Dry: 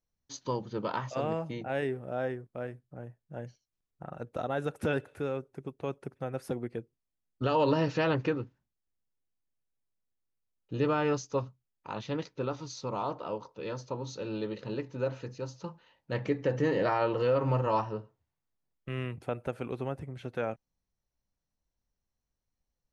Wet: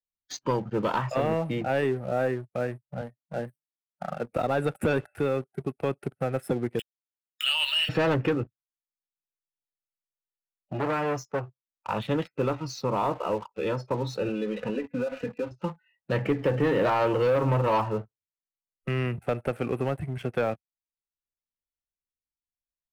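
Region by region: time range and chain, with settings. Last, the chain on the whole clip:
3.01–4.31 s: median filter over 9 samples + high-pass 140 Hz 24 dB/octave + hum notches 50/100/150/200/250/300 Hz
6.79–7.89 s: send-on-delta sampling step -45 dBFS + resonant high-pass 2.9 kHz, resonance Q 11 + upward compressor, threshold -36 dBFS
8.43–11.89 s: feedback comb 170 Hz, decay 0.28 s, mix 40% + transformer saturation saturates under 1.1 kHz
14.28–15.51 s: Chebyshev low-pass 4 kHz, order 5 + comb 4.1 ms, depth 64% + compression 8:1, threshold -34 dBFS
whole clip: spectral noise reduction 27 dB; waveshaping leveller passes 2; three bands compressed up and down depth 40%

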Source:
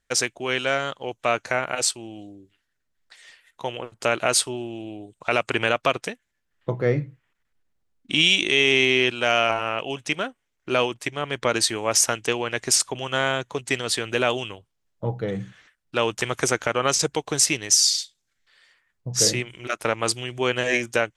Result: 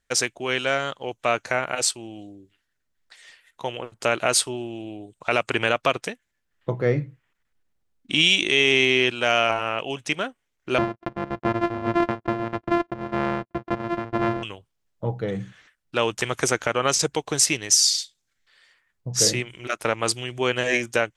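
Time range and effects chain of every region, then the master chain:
10.78–14.43 s: sorted samples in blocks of 128 samples + low-pass 1.5 kHz + gate -38 dBFS, range -28 dB
whole clip: none

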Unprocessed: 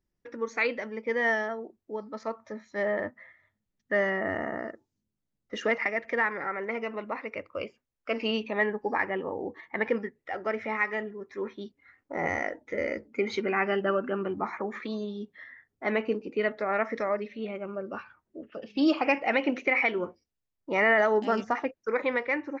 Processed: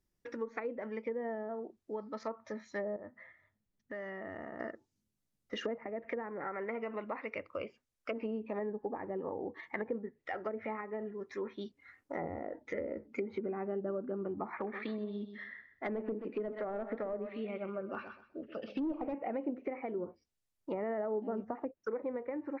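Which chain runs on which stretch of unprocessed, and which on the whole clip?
2.96–4.60 s: treble shelf 2.3 kHz -9.5 dB + compression 2.5:1, threshold -44 dBFS
14.54–19.14 s: low-pass 4.9 kHz 24 dB/octave + hard clipper -23 dBFS + feedback delay 127 ms, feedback 22%, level -12 dB
whole clip: low-pass that closes with the level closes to 570 Hz, closed at -25.5 dBFS; treble shelf 4.7 kHz +6 dB; compression 2:1, threshold -37 dBFS; trim -1 dB

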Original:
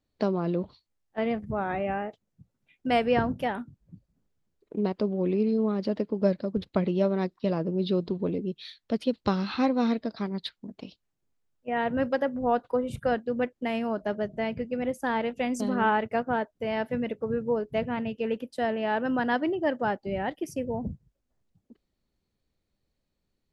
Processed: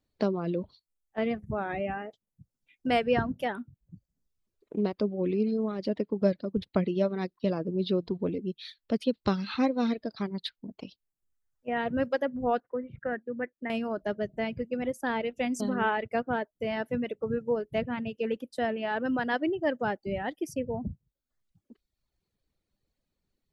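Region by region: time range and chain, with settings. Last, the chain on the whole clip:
12.60–13.70 s: four-pole ladder low-pass 2 kHz, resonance 70% + peaking EQ 300 Hz +7 dB 2.6 oct
whole clip: dynamic bell 930 Hz, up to -4 dB, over -39 dBFS, Q 1.9; reverb removal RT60 0.89 s

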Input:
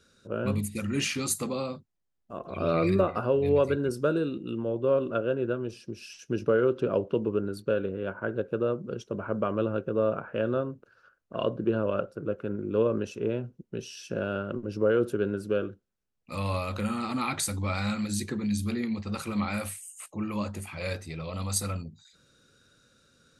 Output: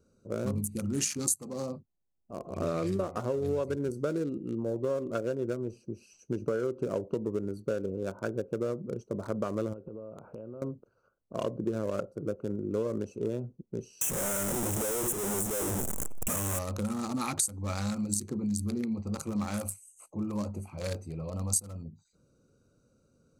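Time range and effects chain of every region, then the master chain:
9.73–10.62 s: low-pass 2.9 kHz + compression 8:1, threshold -38 dBFS
14.01–16.59 s: one-bit comparator + Butterworth band-stop 4.6 kHz, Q 1.4
whole clip: local Wiener filter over 25 samples; resonant high shelf 4.8 kHz +13.5 dB, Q 1.5; compression, threshold -27 dBFS

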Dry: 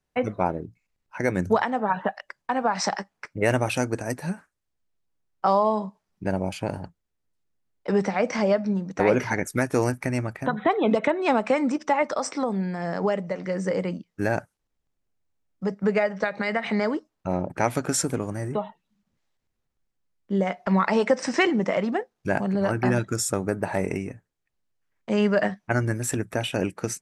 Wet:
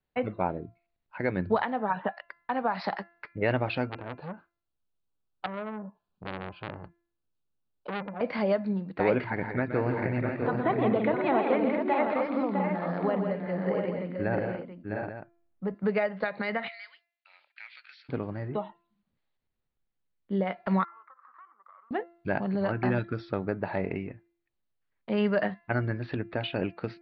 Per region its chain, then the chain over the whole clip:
3.89–8.21 s: low-pass that closes with the level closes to 470 Hz, closed at -20.5 dBFS + Butterworth band-stop 2 kHz, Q 2.5 + transformer saturation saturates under 2.2 kHz
9.24–15.75 s: distance through air 290 m + multi-tap echo 121/167/233/655/703/843 ms -9.5/-6.5/-15/-6/-6.5/-11.5 dB
16.68–18.09 s: block-companded coder 7-bit + Chebyshev high-pass 2.2 kHz, order 3 + compression 2:1, threshold -37 dBFS
20.84–21.91 s: Butterworth band-pass 1.2 kHz, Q 5.4 + compression, threshold -44 dBFS
whole clip: steep low-pass 4.6 kHz 96 dB/octave; de-hum 342 Hz, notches 8; trim -4.5 dB

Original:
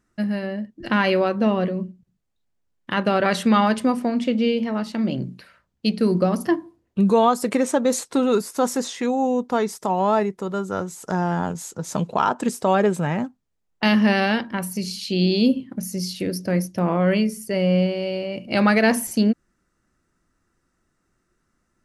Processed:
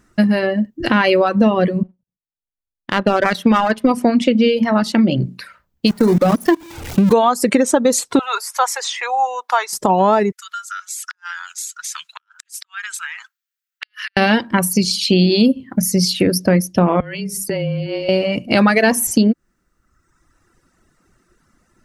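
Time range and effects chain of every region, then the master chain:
1.83–3.91 s: peaking EQ 7.8 kHz -13.5 dB 0.87 oct + power-law waveshaper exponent 1.4
5.87–7.13 s: jump at every zero crossing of -25.5 dBFS + level held to a coarse grid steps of 20 dB
8.19–9.73 s: inverse Chebyshev high-pass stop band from 180 Hz, stop band 70 dB + treble shelf 4.3 kHz -7.5 dB + tape noise reduction on one side only encoder only
10.32–14.17 s: elliptic high-pass 1.4 kHz, stop band 60 dB + compression 12:1, threshold -36 dBFS + inverted gate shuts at -28 dBFS, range -39 dB
17.00–18.09 s: hum notches 50/100/150 Hz + compression 20:1, threshold -29 dBFS + frequency shift -23 Hz
whole clip: reverb removal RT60 1.1 s; compression, threshold -24 dBFS; loudness maximiser +15 dB; trim -1 dB

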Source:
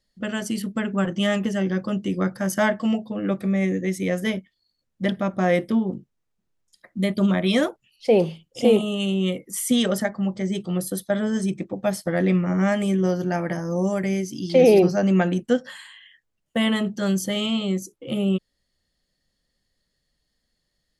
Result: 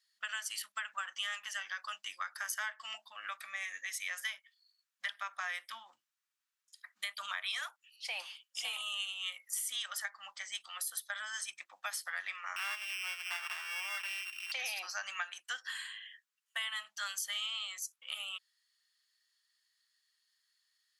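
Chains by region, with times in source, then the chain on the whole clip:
12.56–14.52 s: sorted samples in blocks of 16 samples + tone controls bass -1 dB, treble -10 dB
whole clip: inverse Chebyshev high-pass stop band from 450 Hz, stop band 50 dB; band-stop 2.1 kHz, Q 26; compression 6:1, threshold -35 dBFS

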